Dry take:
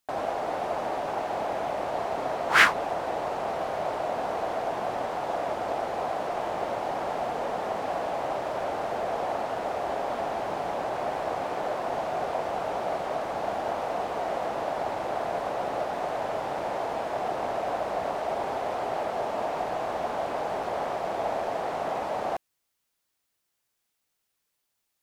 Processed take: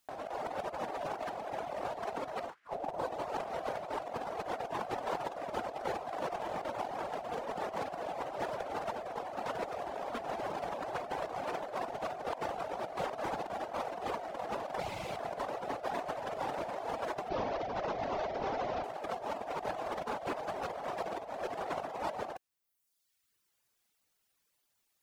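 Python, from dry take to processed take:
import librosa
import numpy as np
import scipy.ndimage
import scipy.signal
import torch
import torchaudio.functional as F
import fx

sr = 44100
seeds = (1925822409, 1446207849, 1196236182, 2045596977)

y = fx.delta_mod(x, sr, bps=32000, step_db=-46.5, at=(17.29, 18.84))
y = fx.dereverb_blind(y, sr, rt60_s=0.95)
y = fx.spec_box(y, sr, start_s=14.8, length_s=0.37, low_hz=210.0, high_hz=2000.0, gain_db=-10)
y = fx.over_compress(y, sr, threshold_db=-36.0, ratio=-0.5)
y = y * librosa.db_to_amplitude(-1.5)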